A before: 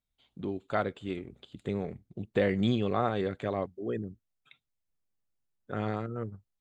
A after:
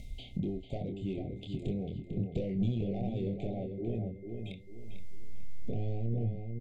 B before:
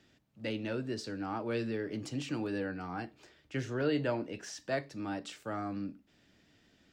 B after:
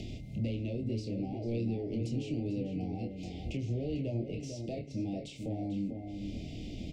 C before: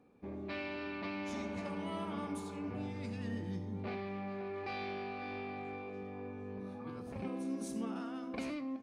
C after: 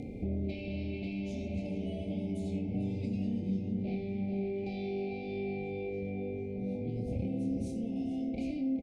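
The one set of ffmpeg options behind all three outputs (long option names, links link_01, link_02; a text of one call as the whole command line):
ffmpeg -i in.wav -filter_complex "[0:a]acompressor=mode=upward:threshold=-35dB:ratio=2.5,highshelf=frequency=3400:gain=11,aeval=exprs='val(0)+0.00224*sin(2*PI*2100*n/s)':channel_layout=same,acompressor=threshold=-40dB:ratio=4,asplit=2[link_01][link_02];[link_02]adelay=26,volume=-6dB[link_03];[link_01][link_03]amix=inputs=2:normalize=0,asoftclip=type=hard:threshold=-34dB,asuperstop=centerf=1300:order=12:qfactor=0.9,aemphasis=mode=reproduction:type=riaa,asplit=2[link_04][link_05];[link_05]adelay=446,lowpass=frequency=2400:poles=1,volume=-6dB,asplit=2[link_06][link_07];[link_07]adelay=446,lowpass=frequency=2400:poles=1,volume=0.34,asplit=2[link_08][link_09];[link_09]adelay=446,lowpass=frequency=2400:poles=1,volume=0.34,asplit=2[link_10][link_11];[link_11]adelay=446,lowpass=frequency=2400:poles=1,volume=0.34[link_12];[link_04][link_06][link_08][link_10][link_12]amix=inputs=5:normalize=0" out.wav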